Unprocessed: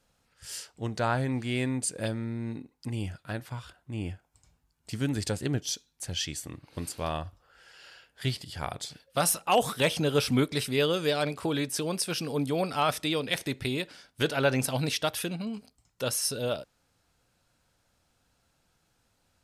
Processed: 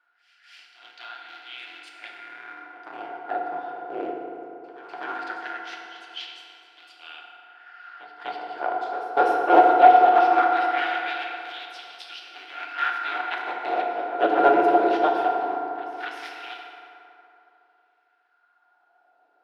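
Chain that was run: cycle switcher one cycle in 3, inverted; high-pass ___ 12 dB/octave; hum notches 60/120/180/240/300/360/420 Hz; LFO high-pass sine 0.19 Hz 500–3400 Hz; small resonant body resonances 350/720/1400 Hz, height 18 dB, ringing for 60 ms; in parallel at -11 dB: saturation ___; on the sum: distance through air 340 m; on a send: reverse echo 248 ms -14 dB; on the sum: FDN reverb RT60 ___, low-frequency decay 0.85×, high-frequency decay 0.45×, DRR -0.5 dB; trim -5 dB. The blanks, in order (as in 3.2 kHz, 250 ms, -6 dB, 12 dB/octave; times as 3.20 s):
130 Hz, -8 dBFS, 3.3 s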